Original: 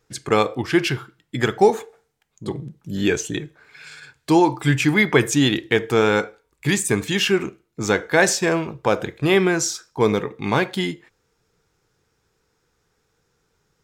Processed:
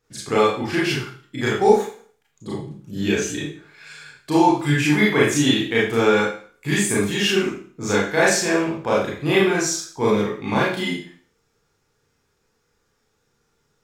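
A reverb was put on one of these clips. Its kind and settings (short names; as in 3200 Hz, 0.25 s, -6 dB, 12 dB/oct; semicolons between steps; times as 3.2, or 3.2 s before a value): Schroeder reverb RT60 0.45 s, combs from 27 ms, DRR -6.5 dB; gain -7 dB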